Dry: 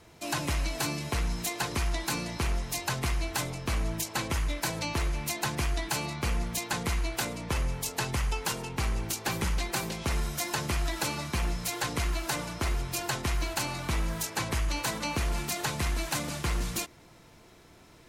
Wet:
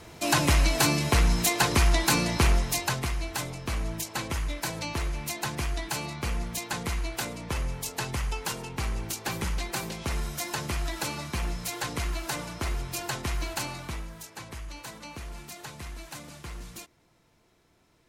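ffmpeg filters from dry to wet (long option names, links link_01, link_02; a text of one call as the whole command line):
ffmpeg -i in.wav -af "volume=8dB,afade=type=out:start_time=2.45:duration=0.64:silence=0.354813,afade=type=out:start_time=13.61:duration=0.49:silence=0.334965" out.wav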